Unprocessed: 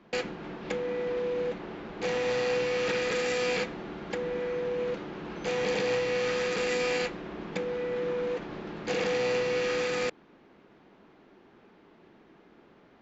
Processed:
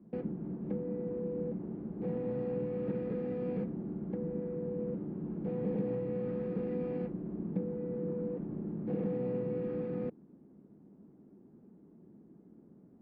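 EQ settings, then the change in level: band-pass filter 200 Hz, Q 1.5; distance through air 170 m; tilt EQ -2.5 dB/octave; 0.0 dB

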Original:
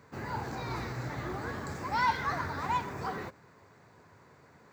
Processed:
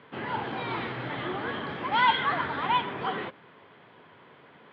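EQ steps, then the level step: high-pass 190 Hz 12 dB/octave; resonant low-pass 3.2 kHz, resonance Q 12; distance through air 320 m; +6.0 dB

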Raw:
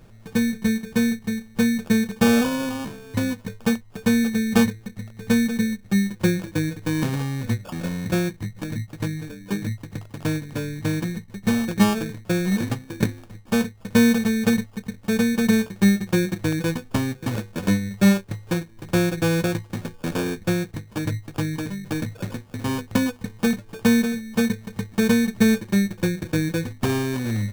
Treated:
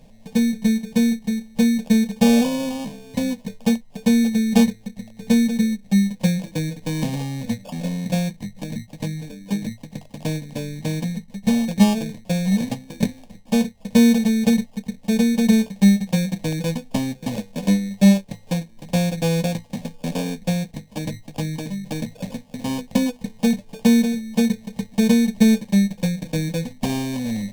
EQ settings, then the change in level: treble shelf 11 kHz -7.5 dB; static phaser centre 360 Hz, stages 6; +3.5 dB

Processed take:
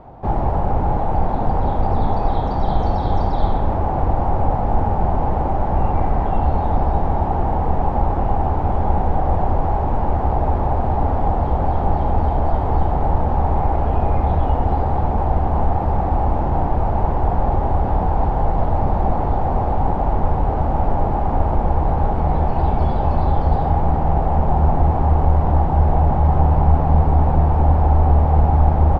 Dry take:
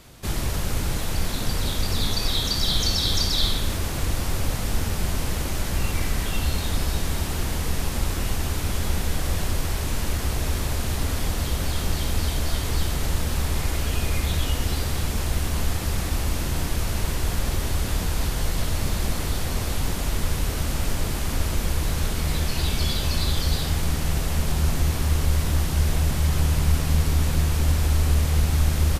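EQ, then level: resonant low-pass 810 Hz, resonance Q 5.9; +6.0 dB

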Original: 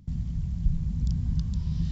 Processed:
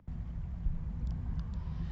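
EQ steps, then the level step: three-band isolator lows -20 dB, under 400 Hz, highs -22 dB, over 2.1 kHz; bass shelf 130 Hz +8.5 dB; +4.0 dB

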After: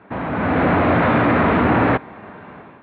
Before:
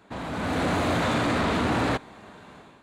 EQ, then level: high-pass 69 Hz; low-pass 2.4 kHz 24 dB/octave; +9.0 dB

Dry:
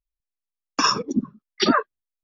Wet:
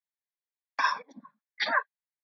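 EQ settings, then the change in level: high-pass 1.2 kHz 12 dB/octave; distance through air 450 m; static phaser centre 1.9 kHz, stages 8; +7.0 dB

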